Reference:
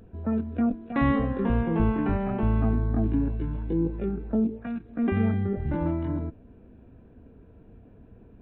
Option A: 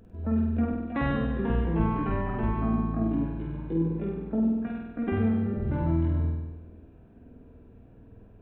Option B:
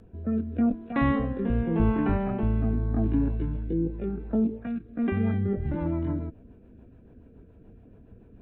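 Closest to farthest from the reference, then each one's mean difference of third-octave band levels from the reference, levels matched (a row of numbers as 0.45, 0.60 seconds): B, A; 1.0, 2.5 decibels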